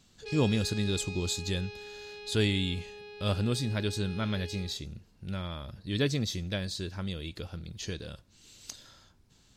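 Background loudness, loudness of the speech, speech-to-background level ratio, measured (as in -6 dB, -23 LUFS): -43.0 LUFS, -32.5 LUFS, 10.5 dB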